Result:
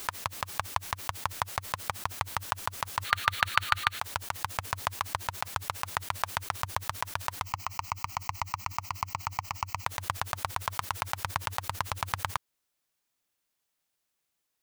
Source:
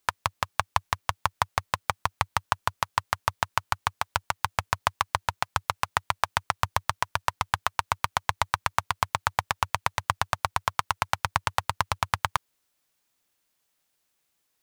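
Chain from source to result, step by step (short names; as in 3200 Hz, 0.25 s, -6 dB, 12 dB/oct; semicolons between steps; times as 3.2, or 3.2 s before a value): 3.05–3.99 spectral gain 1200–4500 Hz +11 dB; 7.44–9.86 fixed phaser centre 2400 Hz, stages 8; backwards sustainer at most 120 dB/s; gain -6 dB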